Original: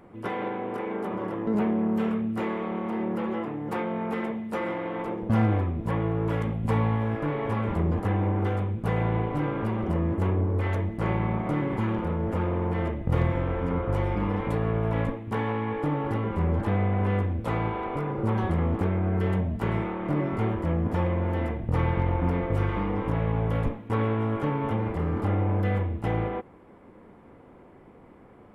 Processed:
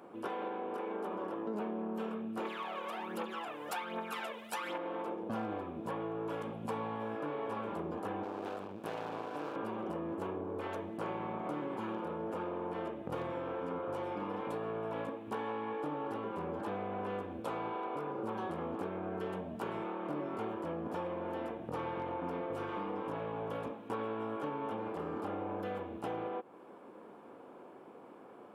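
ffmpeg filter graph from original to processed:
-filter_complex "[0:a]asettb=1/sr,asplit=3[a][b][c];[a]atrim=end=2.454[d];[b]atrim=start=2.45:end=4.78,asetpts=PTS-STARTPTS,afade=t=in:d=0.004:c=qsin,afade=t=out:st=2.326:d=0.004:c=qsin,tiltshelf=f=1.2k:g=-9.5,aphaser=in_gain=1:out_gain=1:delay=2.1:decay=0.63:speed=1.3:type=triangular[e];[c]atrim=start=4.776[f];[d][e]acrossfade=d=0.004:c1=hsin:c2=qsin[g];[g][f]acrossfade=d=0.004:c1=qsin:c2=hsin,asettb=1/sr,asplit=3[h][i][j];[h]atrim=end=8.234[k];[i]atrim=start=8.23:end=9.56,asetpts=PTS-STARTPTS,afade=t=in:d=0.004:c=qsin,afade=t=out:st=1.326:d=0.004:c=qsin,highpass=100,aeval=exprs='max(val(0),0)':c=same[l];[j]atrim=start=9.556[m];[k][l]acrossfade=d=0.004:c1=hsin:c2=qsin[n];[n][m]acrossfade=d=0.004:c1=qsin:c2=hsin,highpass=320,equalizer=f=2k:t=o:w=0.24:g=-12.5,acompressor=threshold=-40dB:ratio=2.5,volume=1dB"

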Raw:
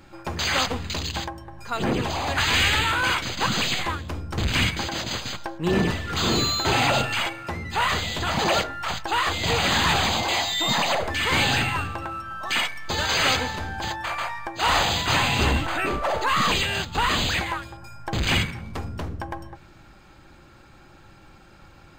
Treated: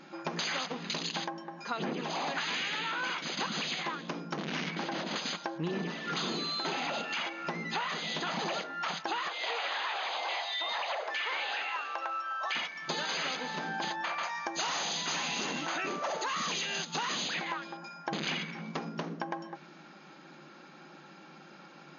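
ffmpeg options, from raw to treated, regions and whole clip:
-filter_complex "[0:a]asettb=1/sr,asplit=3[a][b][c];[a]atrim=end=4.374[d];[b]atrim=start=4.37:end=5.16,asetpts=PTS-STARTPTS,afade=t=in:d=0.004:c=qsin,afade=t=out:st=0.786:d=0.004:c=qsin,lowpass=f=1.5k:p=1,asoftclip=type=hard:threshold=-28dB[e];[c]atrim=start=5.156[f];[d][e]acrossfade=d=0.004:c1=hsin:c2=qsin[g];[g][f]acrossfade=d=0.004:c1=qsin:c2=hsin,asettb=1/sr,asplit=3[h][i][j];[h]atrim=end=9.284[k];[i]atrim=start=9.28:end=12.55,asetpts=PTS-STARTPTS,afade=t=in:d=0.004:c=qsin,afade=t=out:st=3.266:d=0.004:c=qsin,acrossover=split=4000[l][m];[m]acompressor=threshold=-43dB:ratio=4:attack=1:release=60[n];[l][n]amix=inputs=2:normalize=0,highpass=f=500:w=0.5412,highpass=f=500:w=1.3066[o];[j]atrim=start=12.546[p];[k][o]acrossfade=d=0.004:c1=hsin:c2=qsin[q];[q][p]acrossfade=d=0.004:c1=qsin:c2=hsin,asettb=1/sr,asplit=3[r][s][t];[r]atrim=end=14.234[u];[s]atrim=start=14.23:end=17.28,asetpts=PTS-STARTPTS,afade=t=in:d=0.004:c=qsin,afade=t=out:st=3.046:d=0.004:c=qsin,lowpass=8.8k,equalizer=f=6.5k:t=o:w=0.87:g=13,asoftclip=type=hard:threshold=-16.5dB[v];[t]atrim=start=17.276[w];[u][v]acrossfade=d=0.004:c1=hsin:c2=qsin[x];[x][w]acrossfade=d=0.004:c1=qsin:c2=hsin,afftfilt=real='re*between(b*sr/4096,140,6800)':imag='im*between(b*sr/4096,140,6800)':win_size=4096:overlap=0.75,acompressor=threshold=-31dB:ratio=12"

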